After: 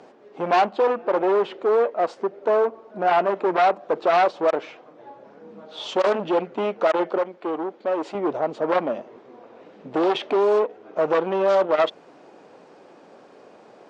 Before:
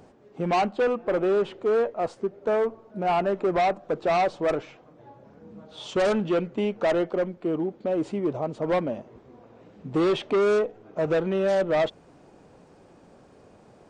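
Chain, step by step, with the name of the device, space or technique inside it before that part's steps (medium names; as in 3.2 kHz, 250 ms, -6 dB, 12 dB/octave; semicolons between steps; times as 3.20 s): public-address speaker with an overloaded transformer (transformer saturation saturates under 610 Hz; band-pass 330–5300 Hz); 7.18–8.15 s: bass shelf 270 Hz -11 dB; trim +7 dB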